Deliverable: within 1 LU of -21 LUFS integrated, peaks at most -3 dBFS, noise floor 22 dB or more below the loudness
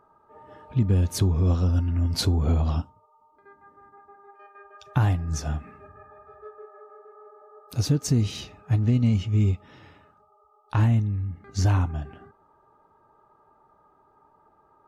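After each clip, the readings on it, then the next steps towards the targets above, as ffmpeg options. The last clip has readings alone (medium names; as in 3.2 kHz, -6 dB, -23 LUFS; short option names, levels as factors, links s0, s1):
loudness -24.5 LUFS; peak level -10.0 dBFS; loudness target -21.0 LUFS
-> -af "volume=1.5"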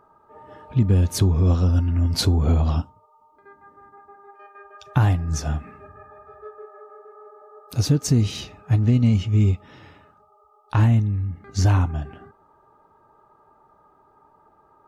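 loudness -21.0 LUFS; peak level -6.5 dBFS; noise floor -58 dBFS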